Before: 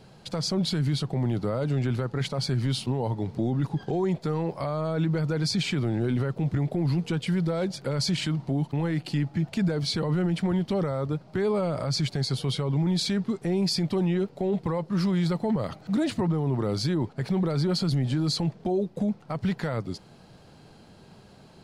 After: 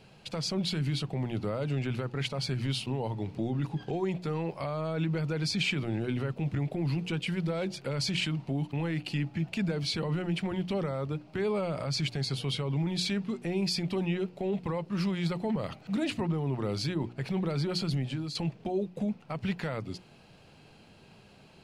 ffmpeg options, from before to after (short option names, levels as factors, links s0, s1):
-filter_complex "[0:a]asplit=2[s0][s1];[s0]atrim=end=18.35,asetpts=PTS-STARTPTS,afade=t=out:st=17.82:d=0.53:c=qsin:silence=0.316228[s2];[s1]atrim=start=18.35,asetpts=PTS-STARTPTS,afade=t=in:d=0.004:c=hsin:silence=0.316228[s3];[s2][s3]concat=n=2:v=0:a=1,equalizer=f=2600:w=2.6:g=10,bandreject=f=60:t=h:w=6,bandreject=f=120:t=h:w=6,bandreject=f=180:t=h:w=6,bandreject=f=240:t=h:w=6,bandreject=f=300:t=h:w=6,bandreject=f=360:t=h:w=6,volume=0.596"